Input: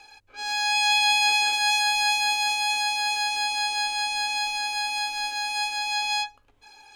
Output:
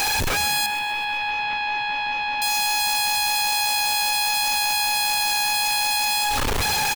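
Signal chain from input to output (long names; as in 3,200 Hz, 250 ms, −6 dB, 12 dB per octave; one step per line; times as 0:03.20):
sign of each sample alone
0:00.66–0:02.42: low-pass filter 3,000 Hz 24 dB per octave
on a send: echo with shifted repeats 128 ms, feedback 55%, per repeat +64 Hz, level −14 dB
on the sum: level +3.5 dB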